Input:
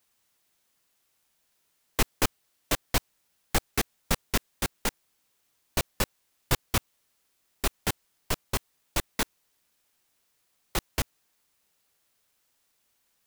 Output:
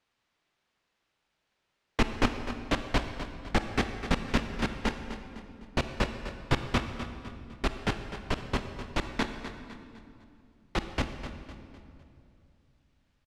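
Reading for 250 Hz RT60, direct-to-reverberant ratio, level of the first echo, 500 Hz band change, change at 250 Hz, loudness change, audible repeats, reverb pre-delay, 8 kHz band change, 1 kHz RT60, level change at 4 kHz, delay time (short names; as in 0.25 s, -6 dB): 3.1 s, 6.0 dB, -11.5 dB, +1.5 dB, +5.0 dB, -2.0 dB, 4, 28 ms, -13.5 dB, 2.3 s, -3.0 dB, 0.253 s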